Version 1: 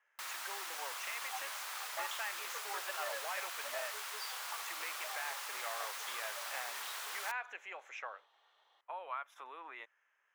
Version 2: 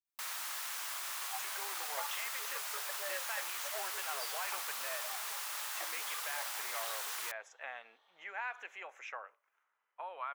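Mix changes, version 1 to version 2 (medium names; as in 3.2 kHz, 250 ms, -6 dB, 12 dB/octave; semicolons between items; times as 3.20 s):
speech: entry +1.10 s; first sound: add treble shelf 6.3 kHz +6.5 dB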